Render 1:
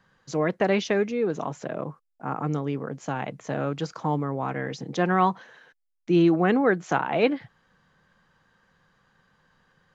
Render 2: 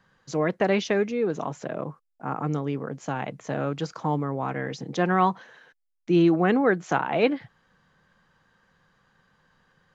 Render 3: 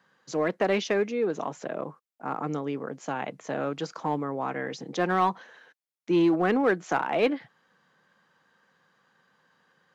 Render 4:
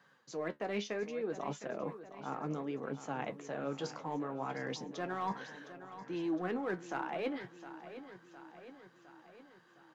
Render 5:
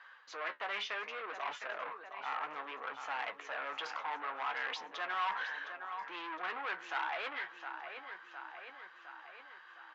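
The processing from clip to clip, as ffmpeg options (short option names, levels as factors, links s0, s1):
-af anull
-filter_complex "[0:a]highpass=220,asplit=2[s0][s1];[s1]asoftclip=type=hard:threshold=0.112,volume=0.631[s2];[s0][s2]amix=inputs=2:normalize=0,volume=0.562"
-af "areverse,acompressor=threshold=0.0158:ratio=4,areverse,flanger=delay=6.9:depth=7.9:regen=56:speed=0.66:shape=sinusoidal,aecho=1:1:711|1422|2133|2844|3555|4266:0.224|0.13|0.0753|0.0437|0.0253|0.0147,volume=1.5"
-af "asoftclip=type=tanh:threshold=0.0112,asuperpass=centerf=1800:order=4:qfactor=0.77,volume=3.98"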